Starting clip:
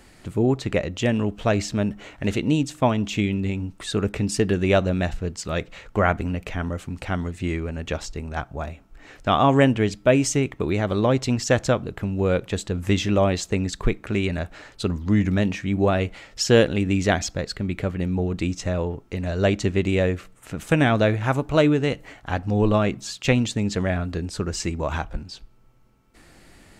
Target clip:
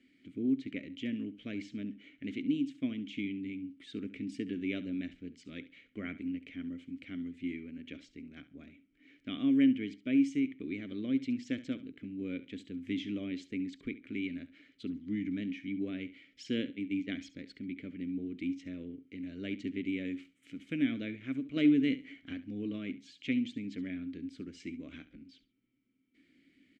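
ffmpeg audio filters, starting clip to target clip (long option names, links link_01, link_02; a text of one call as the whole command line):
ffmpeg -i in.wav -filter_complex "[0:a]asettb=1/sr,asplit=3[link_01][link_02][link_03];[link_01]atrim=end=16.704[link_04];[link_02]atrim=start=16.7:end=17.11,asetpts=PTS-STARTPTS,afade=type=in:duration=0.004:curve=qsin,afade=type=out:start_time=0.406:duration=0.004:curve=qsin,agate=range=-19dB:threshold=-21dB:ratio=16:detection=peak[link_05];[link_03]atrim=start=17.106[link_06];[link_04][link_05]acrossfade=duration=0.004:curve1=hsin:curve2=qsin[link_07];[link_07][link_06]acrossfade=duration=0.004:curve1=qsin:curve2=hsin,asettb=1/sr,asplit=3[link_08][link_09][link_10];[link_08]atrim=end=21.564[link_11];[link_09]atrim=start=21.56:end=22.33,asetpts=PTS-STARTPTS,afade=type=in:duration=0.004:curve=qsin,afade=type=out:start_time=0.766:duration=0.004:curve=qsin,acontrast=62[link_12];[link_10]atrim=start=22.326[link_13];[link_11][link_12]acrossfade=duration=0.004:curve1=hsin:curve2=qsin[link_14];[link_14][link_13]acrossfade=duration=0.004:curve1=qsin:curve2=hsin,asplit=3[link_15][link_16][link_17];[link_15]bandpass=frequency=270:width_type=q:width=8,volume=0dB[link_18];[link_16]bandpass=frequency=2290:width_type=q:width=8,volume=-6dB[link_19];[link_17]bandpass=frequency=3010:width_type=q:width=8,volume=-9dB[link_20];[link_18][link_19][link_20]amix=inputs=3:normalize=0,asettb=1/sr,asplit=3[link_21][link_22][link_23];[link_21]atrim=end=20.054[link_24];[link_22]atrim=start=20.05:end=20.56,asetpts=PTS-STARTPTS,afade=type=in:duration=0.004:curve=qsin,afade=type=out:start_time=0.506:duration=0.004:curve=qsin,highshelf=frequency=3700:gain=10.5[link_25];[link_23]atrim=start=20.556[link_26];[link_24][link_25]acrossfade=duration=0.004:curve1=hsin:curve2=qsin[link_27];[link_27][link_26]acrossfade=duration=0.004:curve1=qsin:curve2=hsin,asplit=2[link_28][link_29];[link_29]aecho=0:1:69|138:0.158|0.0333[link_30];[link_28][link_30]amix=inputs=2:normalize=0,volume=-3.5dB" out.wav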